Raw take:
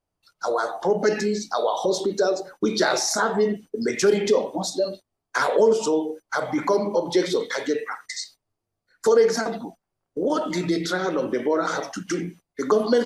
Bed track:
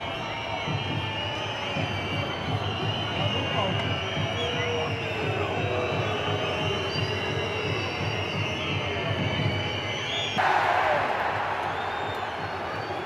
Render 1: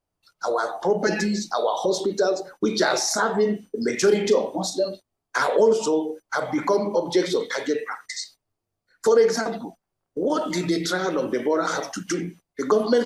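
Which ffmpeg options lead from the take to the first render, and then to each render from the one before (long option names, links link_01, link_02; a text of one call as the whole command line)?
ffmpeg -i in.wav -filter_complex "[0:a]asettb=1/sr,asplit=3[link_01][link_02][link_03];[link_01]atrim=end=1.064[link_04];[link_02]atrim=start=1.06:end=1.51,asetpts=PTS-STARTPTS,afade=type=in:duration=0.004:curve=qsin,afade=type=out:start_time=0.446:duration=0.004:curve=qsin,aecho=1:1:5.9:0.89,atrim=end_sample=19845[link_05];[link_03]atrim=start=1.506[link_06];[link_04][link_05]acrossfade=duration=0.004:curve1=hsin:curve2=qsin[link_07];[link_07][link_06]acrossfade=duration=0.004:curve1=qsin:curve2=hsin,asettb=1/sr,asplit=3[link_08][link_09][link_10];[link_08]atrim=end=3.434[link_11];[link_09]atrim=start=3.43:end=4.83,asetpts=PTS-STARTPTS,afade=type=in:duration=0.004:curve=qsin,afade=type=out:start_time=1.396:duration=0.004:curve=qsin,asplit=2[link_12][link_13];[link_13]adelay=38,volume=-11dB[link_14];[link_12][link_14]amix=inputs=2:normalize=0,atrim=end_sample=61740[link_15];[link_10]atrim=start=4.826[link_16];[link_11][link_15]acrossfade=duration=0.004:curve1=hsin:curve2=qsin[link_17];[link_17][link_16]acrossfade=duration=0.004:curve1=qsin:curve2=hsin,asettb=1/sr,asplit=3[link_18][link_19][link_20];[link_18]atrim=end=10.394[link_21];[link_19]atrim=start=10.39:end=12.13,asetpts=PTS-STARTPTS,afade=type=in:duration=0.004:curve=qsin,afade=type=out:start_time=1.736:duration=0.004:curve=qsin,highshelf=frequency=5600:gain=6[link_22];[link_20]atrim=start=12.126[link_23];[link_21][link_22]acrossfade=duration=0.004:curve1=hsin:curve2=qsin[link_24];[link_24][link_23]acrossfade=duration=0.004:curve1=qsin:curve2=hsin" out.wav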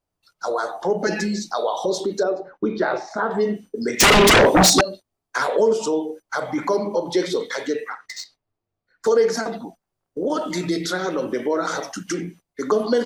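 ffmpeg -i in.wav -filter_complex "[0:a]asettb=1/sr,asplit=3[link_01][link_02][link_03];[link_01]atrim=end=2.234[link_04];[link_02]atrim=start=2.23:end=3.31,asetpts=PTS-STARTPTS,afade=type=in:duration=0.004:curve=qsin,afade=type=out:start_time=1.076:duration=0.004:curve=qsin,lowpass=1800[link_05];[link_03]atrim=start=3.306[link_06];[link_04][link_05]acrossfade=duration=0.004:curve1=hsin:curve2=qsin[link_07];[link_07][link_06]acrossfade=duration=0.004:curve1=qsin:curve2=hsin,asettb=1/sr,asplit=3[link_08][link_09][link_10];[link_08]atrim=end=4.004[link_11];[link_09]atrim=start=4:end=4.81,asetpts=PTS-STARTPTS,afade=type=in:duration=0.004:curve=qsin,afade=type=out:start_time=0.806:duration=0.004:curve=qsin,aeval=exprs='0.355*sin(PI/2*5.62*val(0)/0.355)':channel_layout=same[link_12];[link_10]atrim=start=4.806[link_13];[link_11][link_12]acrossfade=duration=0.004:curve1=hsin:curve2=qsin[link_14];[link_14][link_13]acrossfade=duration=0.004:curve1=qsin:curve2=hsin,asettb=1/sr,asplit=3[link_15][link_16][link_17];[link_15]atrim=end=7.904[link_18];[link_16]atrim=start=7.9:end=9.07,asetpts=PTS-STARTPTS,afade=type=in:duration=0.004:curve=qsin,afade=type=out:start_time=1.166:duration=0.004:curve=qsin,adynamicsmooth=sensitivity=4:basefreq=4500[link_19];[link_17]atrim=start=9.066[link_20];[link_18][link_19]acrossfade=duration=0.004:curve1=hsin:curve2=qsin[link_21];[link_21][link_20]acrossfade=duration=0.004:curve1=qsin:curve2=hsin" out.wav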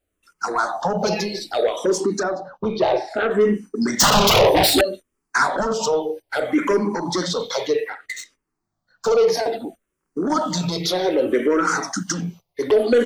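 ffmpeg -i in.wav -filter_complex "[0:a]asplit=2[link_01][link_02];[link_02]aeval=exprs='0.447*sin(PI/2*2.82*val(0)/0.447)':channel_layout=same,volume=-10dB[link_03];[link_01][link_03]amix=inputs=2:normalize=0,asplit=2[link_04][link_05];[link_05]afreqshift=-0.62[link_06];[link_04][link_06]amix=inputs=2:normalize=1" out.wav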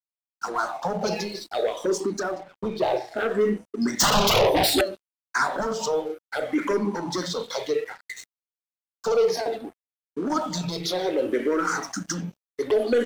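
ffmpeg -i in.wav -af "flanger=delay=1.1:depth=8.2:regen=88:speed=0.47:shape=triangular,aeval=exprs='sgn(val(0))*max(abs(val(0))-0.00473,0)':channel_layout=same" out.wav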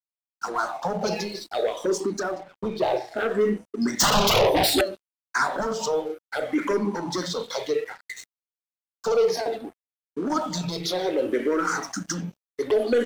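ffmpeg -i in.wav -af anull out.wav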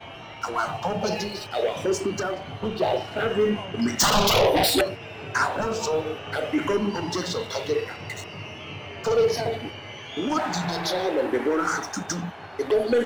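ffmpeg -i in.wav -i bed.wav -filter_complex "[1:a]volume=-9dB[link_01];[0:a][link_01]amix=inputs=2:normalize=0" out.wav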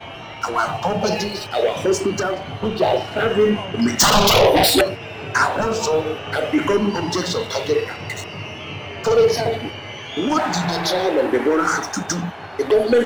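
ffmpeg -i in.wav -af "volume=6dB,alimiter=limit=-3dB:level=0:latency=1" out.wav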